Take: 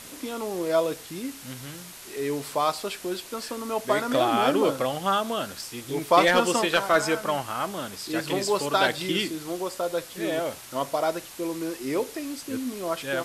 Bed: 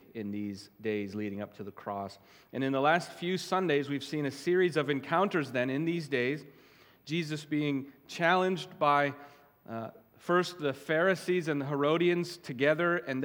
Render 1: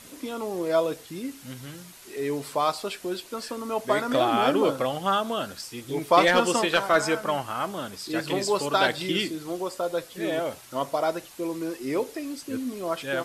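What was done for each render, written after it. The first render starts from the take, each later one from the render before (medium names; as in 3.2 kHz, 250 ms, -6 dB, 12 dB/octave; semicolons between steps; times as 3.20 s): noise reduction 6 dB, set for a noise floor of -44 dBFS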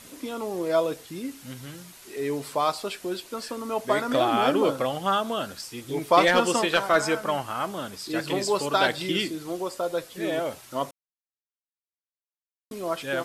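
10.91–12.71 s: mute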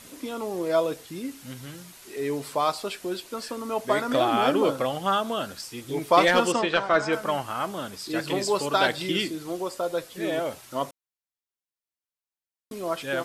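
6.52–7.13 s: distance through air 110 m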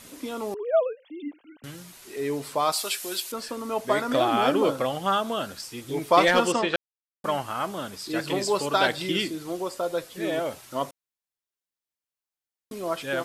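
0.54–1.64 s: formants replaced by sine waves; 2.72–3.32 s: tilt EQ +4 dB/octave; 6.76–7.24 s: mute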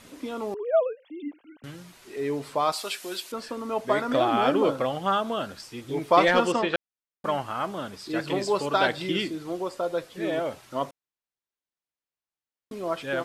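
low-pass 3.4 kHz 6 dB/octave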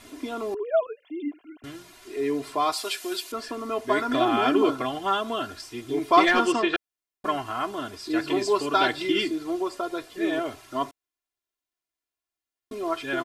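comb 2.9 ms, depth 83%; dynamic bell 610 Hz, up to -6 dB, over -35 dBFS, Q 2.6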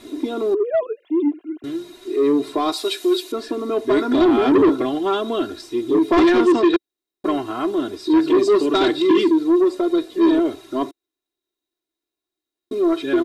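small resonant body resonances 340/3800 Hz, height 17 dB, ringing for 25 ms; saturation -10 dBFS, distortion -10 dB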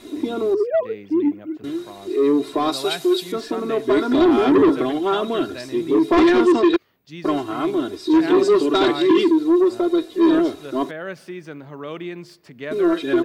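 add bed -4.5 dB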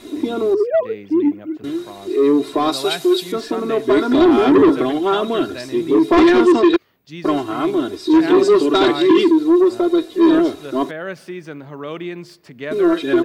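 trim +3 dB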